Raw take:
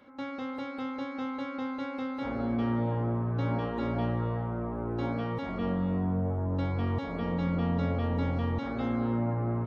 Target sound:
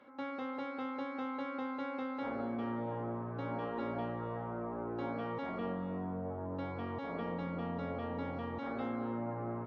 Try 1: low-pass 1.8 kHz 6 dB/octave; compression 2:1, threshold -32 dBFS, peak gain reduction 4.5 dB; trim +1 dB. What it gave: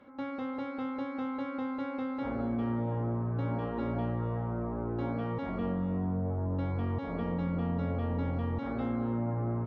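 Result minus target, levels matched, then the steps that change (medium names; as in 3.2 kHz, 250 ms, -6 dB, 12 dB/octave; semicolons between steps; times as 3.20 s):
500 Hz band -3.0 dB
add after compression: high-pass 430 Hz 6 dB/octave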